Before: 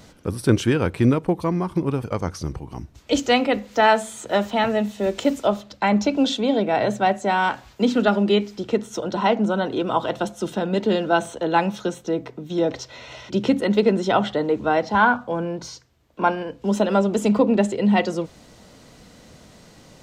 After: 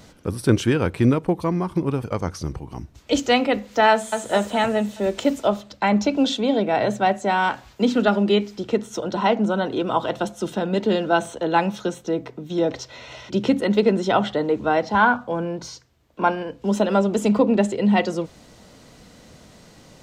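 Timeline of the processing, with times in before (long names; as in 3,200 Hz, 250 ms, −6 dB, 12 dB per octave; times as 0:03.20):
0:03.91–0:04.31: delay throw 210 ms, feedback 55%, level −5.5 dB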